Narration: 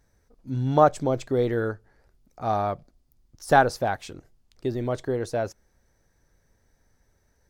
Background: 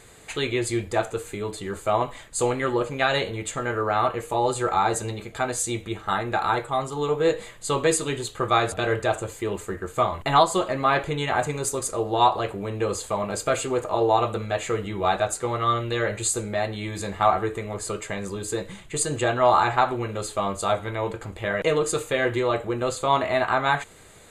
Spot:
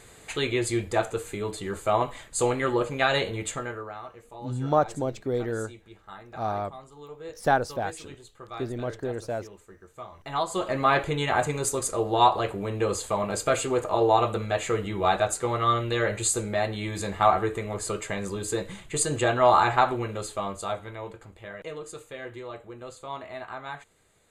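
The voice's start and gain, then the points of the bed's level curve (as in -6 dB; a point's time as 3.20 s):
3.95 s, -4.5 dB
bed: 3.51 s -1 dB
4.02 s -19 dB
10.08 s -19 dB
10.75 s -0.5 dB
19.87 s -0.5 dB
21.65 s -15.5 dB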